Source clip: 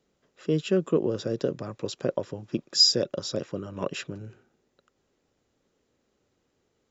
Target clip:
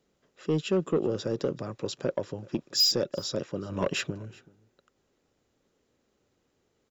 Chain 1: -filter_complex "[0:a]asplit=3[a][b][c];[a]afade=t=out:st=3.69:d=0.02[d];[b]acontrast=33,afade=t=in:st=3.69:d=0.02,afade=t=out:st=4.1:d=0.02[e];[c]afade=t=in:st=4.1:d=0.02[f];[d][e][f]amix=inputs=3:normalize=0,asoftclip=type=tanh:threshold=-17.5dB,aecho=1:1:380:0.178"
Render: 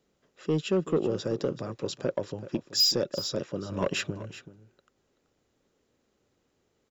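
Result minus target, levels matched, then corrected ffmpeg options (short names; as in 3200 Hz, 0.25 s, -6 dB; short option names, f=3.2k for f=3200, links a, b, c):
echo-to-direct +9 dB
-filter_complex "[0:a]asplit=3[a][b][c];[a]afade=t=out:st=3.69:d=0.02[d];[b]acontrast=33,afade=t=in:st=3.69:d=0.02,afade=t=out:st=4.1:d=0.02[e];[c]afade=t=in:st=4.1:d=0.02[f];[d][e][f]amix=inputs=3:normalize=0,asoftclip=type=tanh:threshold=-17.5dB,aecho=1:1:380:0.0631"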